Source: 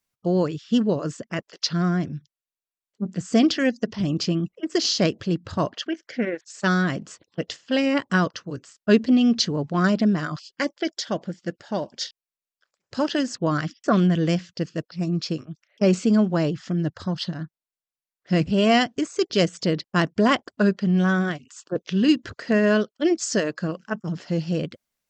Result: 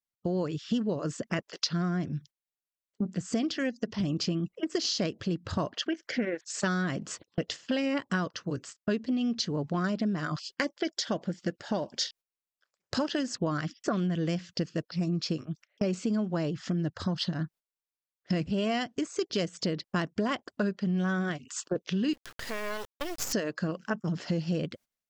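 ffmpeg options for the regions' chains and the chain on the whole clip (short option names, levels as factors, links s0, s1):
-filter_complex "[0:a]asettb=1/sr,asplit=3[s0][s1][s2];[s0]atrim=end=22.134[s3];[s1]atrim=start=22.13:end=23.33,asetpts=PTS-STARTPTS,afade=t=in:d=0.004:c=qsin,afade=t=out:st=1.196:d=0.004:c=qsin,acompressor=threshold=0.0355:ratio=3:attack=3.2:release=140:knee=1:detection=peak,highpass=520,acrusher=bits=5:dc=4:mix=0:aa=0.000001[s4];[s2]atrim=start=23.326[s5];[s3][s4]acrossfade=d=0.004:c1=hsin:c2=qsin[s6];[s6][s5]acrossfade=d=0.004:c1=qsin:c2=hsin,dynaudnorm=f=270:g=3:m=3.35,agate=range=0.158:threshold=0.0112:ratio=16:detection=peak,acompressor=threshold=0.0316:ratio=4"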